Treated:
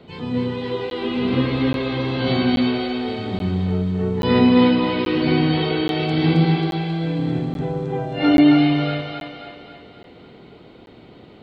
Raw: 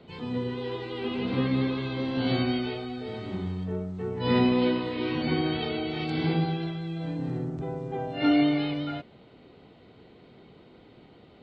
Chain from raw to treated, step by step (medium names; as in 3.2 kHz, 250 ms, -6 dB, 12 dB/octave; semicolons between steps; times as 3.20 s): two-band feedback delay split 420 Hz, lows 108 ms, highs 269 ms, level -3 dB; crackling interface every 0.83 s, samples 512, zero, from 0.90 s; trim +6 dB